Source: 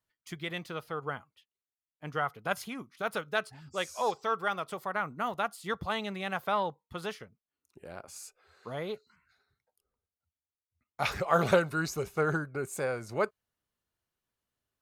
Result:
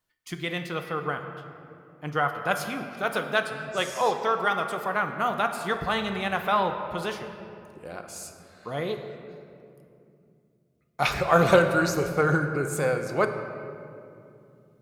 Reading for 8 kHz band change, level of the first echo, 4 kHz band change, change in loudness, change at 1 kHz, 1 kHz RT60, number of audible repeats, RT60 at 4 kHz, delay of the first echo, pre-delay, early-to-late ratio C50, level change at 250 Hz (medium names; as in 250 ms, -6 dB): +6.0 dB, no echo, +6.5 dB, +6.5 dB, +6.5 dB, 2.4 s, no echo, 1.4 s, no echo, 3 ms, 7.0 dB, +7.5 dB